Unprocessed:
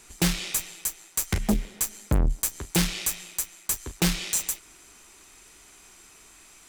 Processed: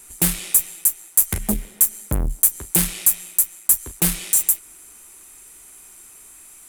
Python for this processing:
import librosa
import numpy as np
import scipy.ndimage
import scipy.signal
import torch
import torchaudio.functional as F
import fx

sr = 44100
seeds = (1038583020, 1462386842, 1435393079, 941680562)

y = fx.quant_float(x, sr, bits=6)
y = fx.high_shelf_res(y, sr, hz=7500.0, db=12.0, q=1.5)